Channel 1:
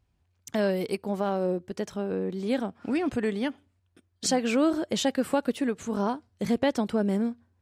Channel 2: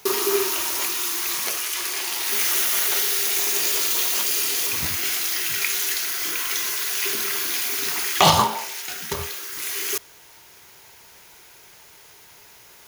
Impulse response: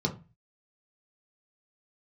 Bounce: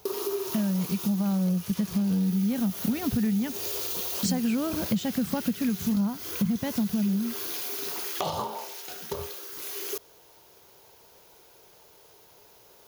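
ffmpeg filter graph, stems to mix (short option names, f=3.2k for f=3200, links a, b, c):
-filter_complex "[0:a]dynaudnorm=f=170:g=13:m=11.5dB,lowshelf=f=260:t=q:w=3:g=11,volume=-8dB[a];[1:a]equalizer=f=500:t=o:w=1:g=8,equalizer=f=2k:t=o:w=1:g=-9,equalizer=f=8k:t=o:w=1:g=-6,acompressor=threshold=-23dB:ratio=3,volume=-5.5dB[b];[a][b]amix=inputs=2:normalize=0,acompressor=threshold=-24dB:ratio=6"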